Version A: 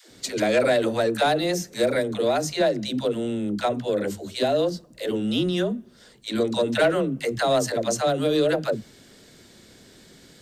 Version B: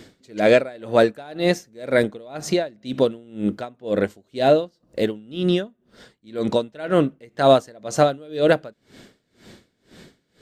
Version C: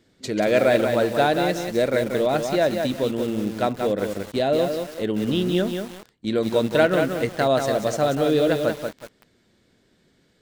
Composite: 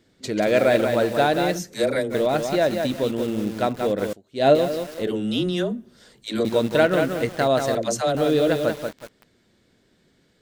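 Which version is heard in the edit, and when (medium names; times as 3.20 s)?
C
1.57–2.12 s: from A, crossfade 0.06 s
4.13–4.55 s: from B
5.07–6.45 s: from A
7.75–8.15 s: from A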